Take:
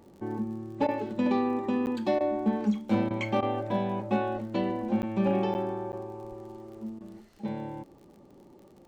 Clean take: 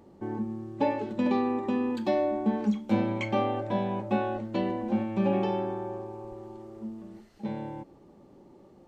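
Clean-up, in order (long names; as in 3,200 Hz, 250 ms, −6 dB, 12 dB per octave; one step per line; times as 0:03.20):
clipped peaks rebuilt −17 dBFS
click removal
repair the gap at 0:01.86/0:05.02/0:05.54/0:05.92, 9.6 ms
repair the gap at 0:00.87/0:02.19/0:03.09/0:03.41/0:06.99, 14 ms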